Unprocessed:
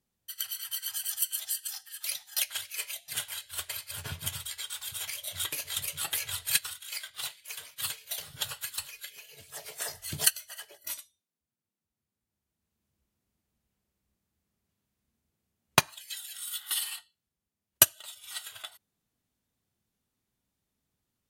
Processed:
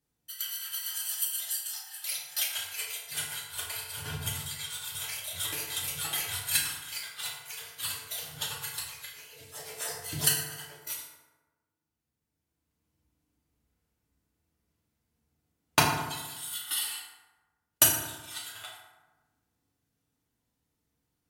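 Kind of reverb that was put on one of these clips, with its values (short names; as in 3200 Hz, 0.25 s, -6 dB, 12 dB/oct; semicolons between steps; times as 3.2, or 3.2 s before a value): FDN reverb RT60 1.2 s, low-frequency decay 1.05×, high-frequency decay 0.5×, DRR -5 dB; gain -4 dB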